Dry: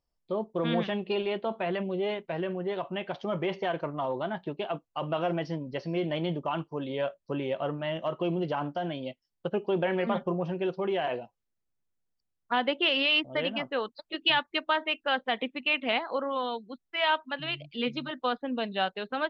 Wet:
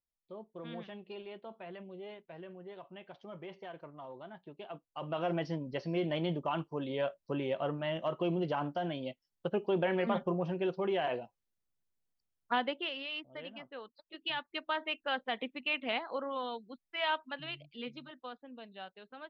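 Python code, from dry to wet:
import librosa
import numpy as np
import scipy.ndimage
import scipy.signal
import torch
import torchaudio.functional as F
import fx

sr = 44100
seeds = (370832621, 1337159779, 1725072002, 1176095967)

y = fx.gain(x, sr, db=fx.line((4.44, -16.0), (5.36, -3.0), (12.53, -3.0), (12.99, -15.5), (13.97, -15.5), (14.83, -6.5), (17.28, -6.5), (18.46, -18.0)))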